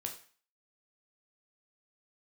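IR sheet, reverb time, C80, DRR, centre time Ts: 0.40 s, 13.5 dB, 2.0 dB, 16 ms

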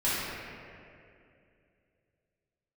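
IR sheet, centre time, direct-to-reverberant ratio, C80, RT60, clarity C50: 164 ms, −11.5 dB, −1.5 dB, 2.5 s, −4.0 dB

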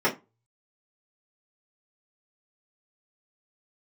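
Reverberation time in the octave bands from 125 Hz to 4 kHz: 0.70, 0.25, 0.25, 0.25, 0.20, 0.15 seconds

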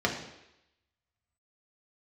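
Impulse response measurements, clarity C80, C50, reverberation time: 9.5 dB, 7.0 dB, 0.85 s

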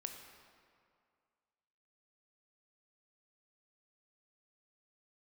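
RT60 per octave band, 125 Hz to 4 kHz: 2.0, 2.1, 2.2, 2.2, 1.9, 1.4 seconds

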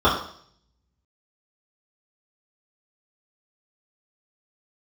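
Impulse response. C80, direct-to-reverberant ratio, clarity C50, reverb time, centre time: 9.0 dB, −10.5 dB, 5.0 dB, 0.60 s, 36 ms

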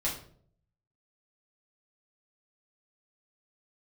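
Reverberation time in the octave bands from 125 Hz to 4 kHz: 0.95, 0.70, 0.65, 0.45, 0.40, 0.35 seconds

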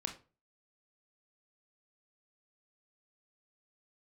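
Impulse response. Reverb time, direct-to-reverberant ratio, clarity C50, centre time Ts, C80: 0.35 s, 4.0 dB, 11.0 dB, 13 ms, 17.0 dB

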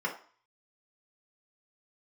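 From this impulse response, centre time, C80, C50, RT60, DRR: 17 ms, 14.0 dB, 9.5 dB, 0.45 s, −3.5 dB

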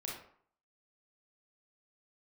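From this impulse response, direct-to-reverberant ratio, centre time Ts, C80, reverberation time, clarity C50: −3.5 dB, 44 ms, 7.5 dB, 0.60 s, 2.5 dB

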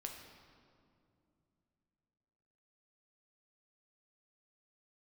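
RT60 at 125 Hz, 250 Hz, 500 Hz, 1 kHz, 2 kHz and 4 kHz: 3.7, 3.5, 2.8, 2.3, 1.7, 1.5 seconds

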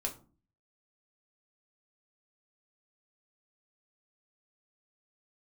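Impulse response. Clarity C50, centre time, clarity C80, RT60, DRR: 14.0 dB, 12 ms, 19.0 dB, 0.40 s, 0.0 dB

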